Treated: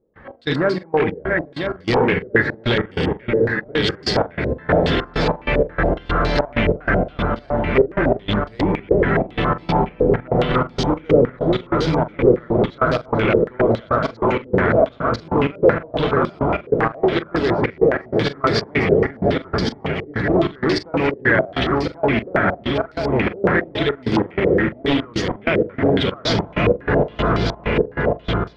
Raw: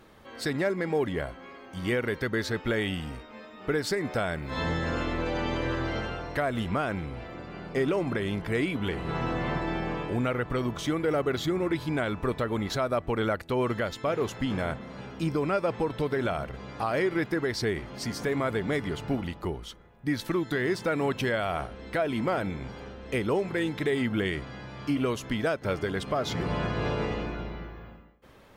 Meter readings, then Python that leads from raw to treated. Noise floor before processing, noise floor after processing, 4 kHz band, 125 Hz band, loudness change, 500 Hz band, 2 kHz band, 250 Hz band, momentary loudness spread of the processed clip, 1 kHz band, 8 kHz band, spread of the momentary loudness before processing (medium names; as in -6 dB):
-48 dBFS, -43 dBFS, +10.5 dB, +10.0 dB, +10.5 dB, +11.5 dB, +10.5 dB, +9.5 dB, 5 LU, +11.0 dB, no reading, 9 LU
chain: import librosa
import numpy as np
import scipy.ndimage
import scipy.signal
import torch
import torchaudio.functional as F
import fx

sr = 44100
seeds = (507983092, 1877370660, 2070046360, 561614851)

p1 = fx.reverse_delay_fb(x, sr, ms=498, feedback_pct=79, wet_db=-4)
p2 = p1 + fx.echo_single(p1, sr, ms=150, db=-10.5, dry=0)
p3 = fx.step_gate(p2, sr, bpm=96, pattern='.x.xx.x.x', floor_db=-24.0, edge_ms=4.5)
p4 = fx.low_shelf(p3, sr, hz=390.0, db=5.0)
p5 = fx.doubler(p4, sr, ms=43.0, db=-13.5)
p6 = fx.rider(p5, sr, range_db=10, speed_s=2.0)
p7 = p5 + (p6 * librosa.db_to_amplitude(2.0))
p8 = 10.0 ** (-9.5 / 20.0) * (np.abs((p7 / 10.0 ** (-9.5 / 20.0) + 3.0) % 4.0 - 2.0) - 1.0)
p9 = fx.filter_held_lowpass(p8, sr, hz=7.2, low_hz=480.0, high_hz=4700.0)
y = p9 * librosa.db_to_amplitude(-2.0)